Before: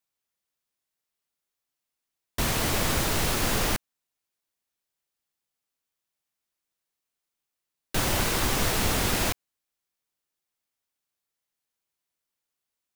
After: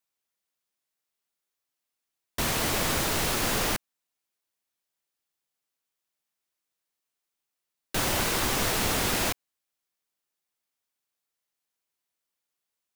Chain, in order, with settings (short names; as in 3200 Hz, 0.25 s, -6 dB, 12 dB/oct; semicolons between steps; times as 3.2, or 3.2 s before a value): low shelf 140 Hz -6.5 dB